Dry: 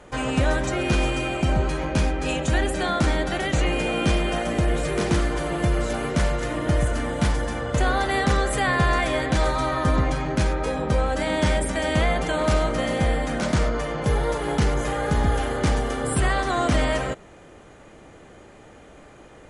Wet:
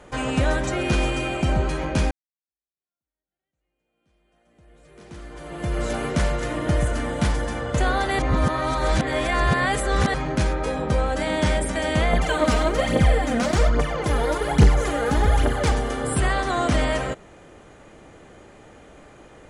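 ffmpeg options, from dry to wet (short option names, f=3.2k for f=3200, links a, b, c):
-filter_complex "[0:a]asettb=1/sr,asplit=3[a][b][c];[a]atrim=end=12.134[d];[b]atrim=start=12.13:end=15.72,asetpts=PTS-STARTPTS,afade=t=in:d=0.004:c=qsin,afade=t=out:st=3.586:d=0.004:c=qsin,aphaser=in_gain=1:out_gain=1:delay=4.5:decay=0.64:speed=1.2:type=triangular[e];[c]atrim=start=15.716[f];[d][e]acrossfade=d=0.004:c1=hsin:c2=qsin[g];[g][f]acrossfade=d=0.004:c1=qsin:c2=hsin,asplit=4[h][i][j][k];[h]atrim=end=2.11,asetpts=PTS-STARTPTS,afade=t=out:st=2.106:d=0.004:c=hsin[l];[i]atrim=start=2.11:end=8.192,asetpts=PTS-STARTPTS,afade=t=in:d=3.75:c=exp[m];[j]atrim=start=8.188:end=10.142,asetpts=PTS-STARTPTS,areverse[n];[k]atrim=start=10.138[o];[l][m]concat=n=2:v=0:a=1[p];[p][n]acrossfade=d=0.004:c1=hsin:c2=hsin[q];[q][o]acrossfade=d=0.004:c1=hsin:c2=hsin"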